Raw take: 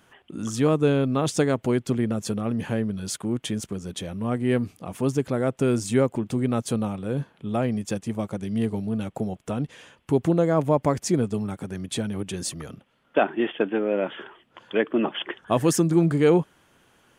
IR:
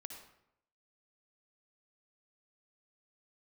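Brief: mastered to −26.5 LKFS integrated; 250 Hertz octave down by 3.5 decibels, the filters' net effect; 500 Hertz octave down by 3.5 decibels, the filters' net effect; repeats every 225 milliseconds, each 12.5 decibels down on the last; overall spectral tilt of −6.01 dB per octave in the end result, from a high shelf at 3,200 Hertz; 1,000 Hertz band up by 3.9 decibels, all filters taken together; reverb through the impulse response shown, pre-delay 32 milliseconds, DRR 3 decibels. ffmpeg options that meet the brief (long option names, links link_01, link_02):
-filter_complex "[0:a]equalizer=frequency=250:width_type=o:gain=-3.5,equalizer=frequency=500:width_type=o:gain=-5,equalizer=frequency=1000:width_type=o:gain=7.5,highshelf=frequency=3200:gain=-4.5,aecho=1:1:225|450|675:0.237|0.0569|0.0137,asplit=2[link_01][link_02];[1:a]atrim=start_sample=2205,adelay=32[link_03];[link_02][link_03]afir=irnorm=-1:irlink=0,volume=1.5dB[link_04];[link_01][link_04]amix=inputs=2:normalize=0,volume=-1dB"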